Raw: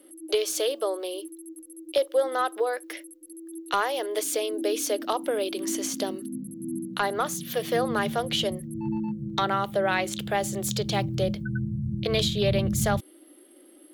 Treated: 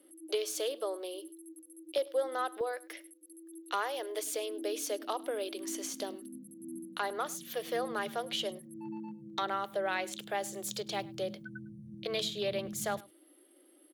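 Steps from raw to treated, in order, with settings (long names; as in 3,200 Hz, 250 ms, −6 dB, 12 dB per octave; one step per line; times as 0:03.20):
high-pass filter 93 Hz 12 dB per octave, from 0:02.61 290 Hz
single-tap delay 103 ms −22 dB
level −8 dB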